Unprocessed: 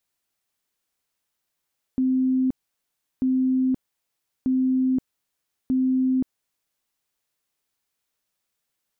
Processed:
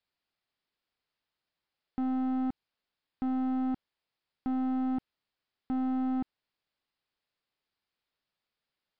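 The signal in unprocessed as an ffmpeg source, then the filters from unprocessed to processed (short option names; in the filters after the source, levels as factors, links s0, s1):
-f lavfi -i "aevalsrc='0.126*sin(2*PI*259*mod(t,1.24))*lt(mod(t,1.24),136/259)':d=4.96:s=44100"
-af "aresample=11025,asoftclip=type=tanh:threshold=0.0335,aresample=44100,aeval=exprs='0.0335*(cos(1*acos(clip(val(0)/0.0335,-1,1)))-cos(1*PI/2))+0.00335*(cos(2*acos(clip(val(0)/0.0335,-1,1)))-cos(2*PI/2))+0.00376*(cos(3*acos(clip(val(0)/0.0335,-1,1)))-cos(3*PI/2))':c=same"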